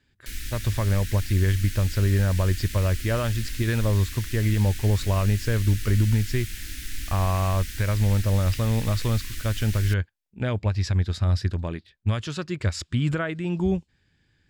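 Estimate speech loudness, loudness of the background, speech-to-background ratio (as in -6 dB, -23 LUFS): -25.0 LUFS, -36.0 LUFS, 11.0 dB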